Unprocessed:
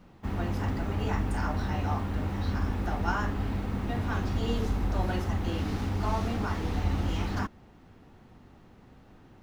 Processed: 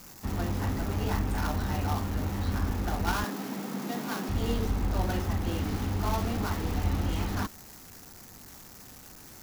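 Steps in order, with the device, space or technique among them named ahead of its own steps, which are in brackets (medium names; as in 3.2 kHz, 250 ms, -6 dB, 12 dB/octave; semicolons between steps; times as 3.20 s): 3.24–4.29 s: steep high-pass 150 Hz 72 dB/octave; budget class-D amplifier (dead-time distortion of 0.17 ms; zero-crossing glitches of -30 dBFS)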